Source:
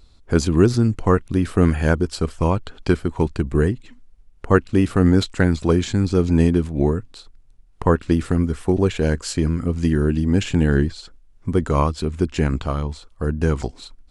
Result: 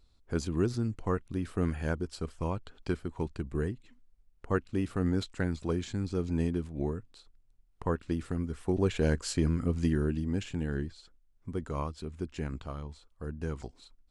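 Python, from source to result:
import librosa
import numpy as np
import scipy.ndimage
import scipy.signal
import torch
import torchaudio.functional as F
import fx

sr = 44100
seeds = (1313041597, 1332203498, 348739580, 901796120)

y = fx.gain(x, sr, db=fx.line((8.45, -14.0), (8.99, -7.5), (9.75, -7.5), (10.55, -16.0)))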